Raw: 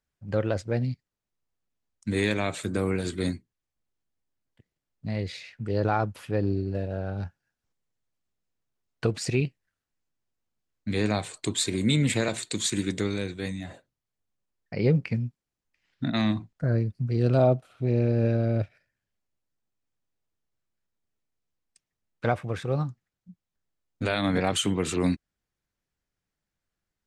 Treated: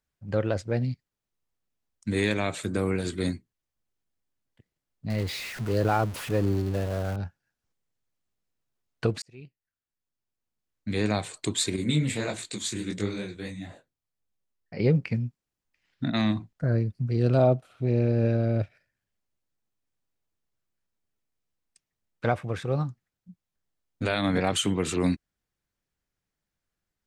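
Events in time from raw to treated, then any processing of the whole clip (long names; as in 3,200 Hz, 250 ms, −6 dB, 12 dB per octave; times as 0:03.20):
0:05.10–0:07.16: converter with a step at zero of −34 dBFS
0:09.22–0:11.13: fade in
0:11.76–0:14.80: micro pitch shift up and down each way 54 cents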